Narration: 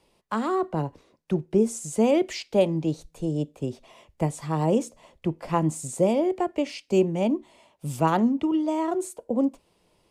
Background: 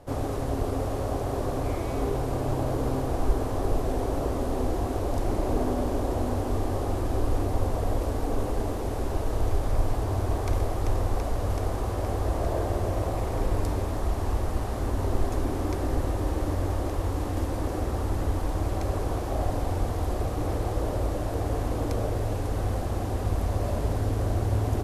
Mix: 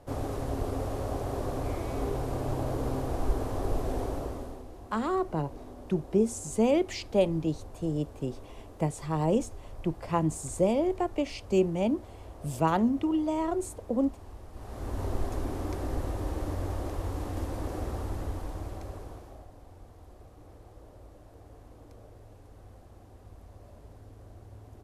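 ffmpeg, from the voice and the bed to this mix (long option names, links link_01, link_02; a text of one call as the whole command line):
ffmpeg -i stem1.wav -i stem2.wav -filter_complex "[0:a]adelay=4600,volume=-3.5dB[link_01];[1:a]volume=9.5dB,afade=type=out:start_time=4:duration=0.64:silence=0.177828,afade=type=in:start_time=14.52:duration=0.49:silence=0.211349,afade=type=out:start_time=17.87:duration=1.6:silence=0.125893[link_02];[link_01][link_02]amix=inputs=2:normalize=0" out.wav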